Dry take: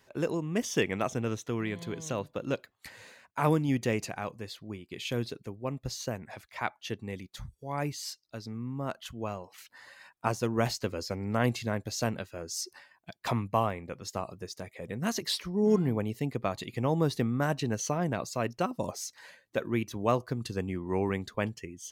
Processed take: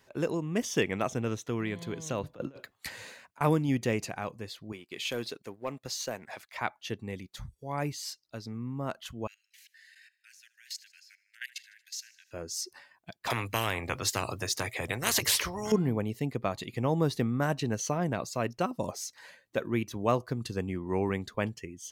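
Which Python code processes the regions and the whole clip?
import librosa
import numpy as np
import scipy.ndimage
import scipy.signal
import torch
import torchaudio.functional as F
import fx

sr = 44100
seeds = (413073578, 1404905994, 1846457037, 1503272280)

y = fx.chain(x, sr, fx.over_compress(threshold_db=-39.0, ratio=-0.5),
    fx.band_widen(depth_pct=40), at=(2.23, 3.41))
y = fx.chain(y, sr, fx.highpass(hz=540.0, slope=6),
    fx.leveller(passes=1), at=(4.72, 6.57))
y = fx.chain(y, sr, fx.steep_highpass(hz=1600.0, slope=96),
    fx.level_steps(step_db=19),
    fx.echo_feedback(ms=77, feedback_pct=60, wet_db=-20.5), at=(9.27, 12.31))
y = fx.chain(y, sr, fx.highpass(hz=60.0, slope=24),
    fx.low_shelf_res(hz=150.0, db=8.5, q=3.0),
    fx.spectral_comp(ratio=4.0), at=(13.3, 15.72))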